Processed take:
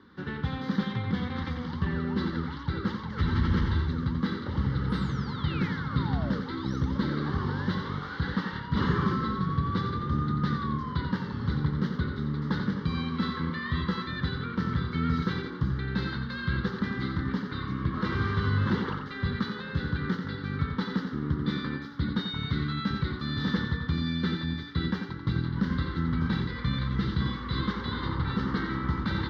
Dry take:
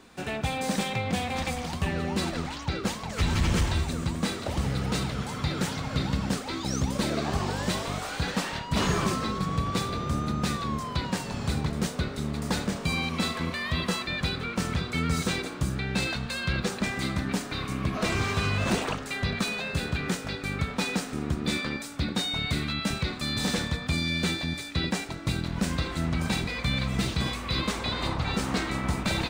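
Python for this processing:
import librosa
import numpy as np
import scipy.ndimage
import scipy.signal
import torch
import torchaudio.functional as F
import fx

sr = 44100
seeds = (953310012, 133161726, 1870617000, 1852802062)

y = fx.tracing_dist(x, sr, depth_ms=0.038)
y = scipy.signal.sosfilt(scipy.signal.butter(2, 68.0, 'highpass', fs=sr, output='sos'), y)
y = fx.fixed_phaser(y, sr, hz=2500.0, stages=6)
y = fx.spec_paint(y, sr, seeds[0], shape='fall', start_s=4.89, length_s=1.52, low_hz=430.0, high_hz=10000.0, level_db=-42.0)
y = fx.air_absorb(y, sr, metres=330.0)
y = y + 10.0 ** (-7.5 / 20.0) * np.pad(y, (int(89 * sr / 1000.0), 0))[:len(y)]
y = y * 10.0 ** (2.0 / 20.0)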